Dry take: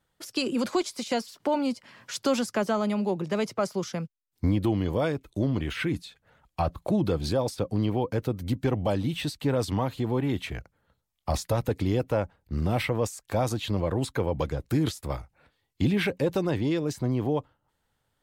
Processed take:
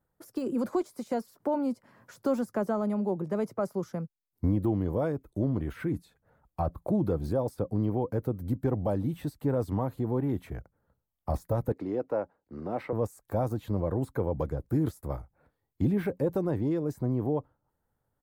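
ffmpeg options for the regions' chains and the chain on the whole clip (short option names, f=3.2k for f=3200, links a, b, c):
-filter_complex "[0:a]asettb=1/sr,asplit=3[a][b][c];[a]atrim=end=11.724[d];[b]atrim=start=11.72:end=12.93,asetpts=PTS-STARTPTS,afade=t=in:d=0.004:c=qsin,afade=t=out:st=1.206:d=0.004:c=qsin,acrossover=split=230 5700:gain=0.0891 1 0.1[e][f][g];[e][f][g]amix=inputs=3:normalize=0,bandreject=f=3.3k:w=11[h];[c]atrim=start=12.926[i];[d][h]acrossfade=d=0.004:c1=hsin:c2=qsin[j];[j][i]acrossfade=d=0.004:c1=qsin:c2=hsin,deesser=0.8,firequalizer=gain_entry='entry(470,0);entry(1500,-6);entry(2800,-19);entry(13000,-1)':delay=0.05:min_phase=1,volume=-2dB"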